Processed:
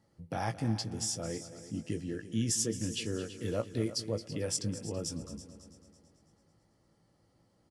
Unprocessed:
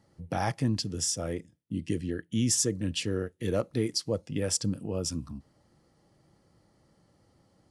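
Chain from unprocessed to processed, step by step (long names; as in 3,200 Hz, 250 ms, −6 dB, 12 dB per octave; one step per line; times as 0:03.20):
double-tracking delay 18 ms −9 dB
echo machine with several playback heads 110 ms, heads second and third, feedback 46%, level −14.5 dB
level −5.5 dB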